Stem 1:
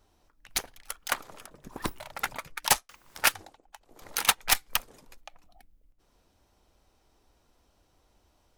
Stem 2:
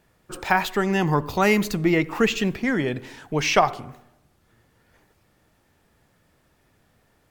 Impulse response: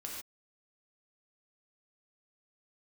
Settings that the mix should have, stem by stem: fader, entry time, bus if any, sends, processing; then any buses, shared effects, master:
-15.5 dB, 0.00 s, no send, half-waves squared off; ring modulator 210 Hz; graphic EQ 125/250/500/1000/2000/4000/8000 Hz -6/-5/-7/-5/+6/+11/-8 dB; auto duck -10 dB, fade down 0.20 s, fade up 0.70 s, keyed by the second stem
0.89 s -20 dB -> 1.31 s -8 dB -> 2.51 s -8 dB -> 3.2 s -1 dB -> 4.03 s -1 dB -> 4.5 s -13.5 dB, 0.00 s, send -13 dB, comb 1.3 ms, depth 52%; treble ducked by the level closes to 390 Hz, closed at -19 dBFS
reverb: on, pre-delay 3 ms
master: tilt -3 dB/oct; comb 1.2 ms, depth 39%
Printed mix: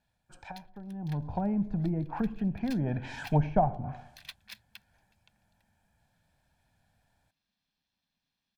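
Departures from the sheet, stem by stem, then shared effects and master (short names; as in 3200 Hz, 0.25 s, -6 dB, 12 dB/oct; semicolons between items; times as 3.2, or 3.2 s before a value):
stem 1: missing half-waves squared off; master: missing tilt -3 dB/oct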